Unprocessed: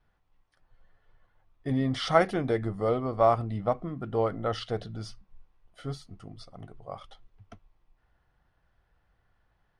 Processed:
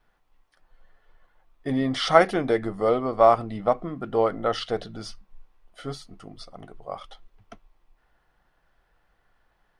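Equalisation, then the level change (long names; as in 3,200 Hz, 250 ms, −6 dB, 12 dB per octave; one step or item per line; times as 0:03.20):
parametric band 87 Hz −13.5 dB 1.6 octaves
+6.0 dB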